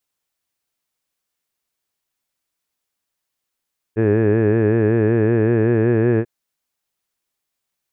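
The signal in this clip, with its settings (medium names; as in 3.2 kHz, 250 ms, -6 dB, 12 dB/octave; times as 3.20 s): formant vowel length 2.29 s, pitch 107 Hz, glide +1.5 st, F1 400 Hz, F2 1.7 kHz, F3 2.5 kHz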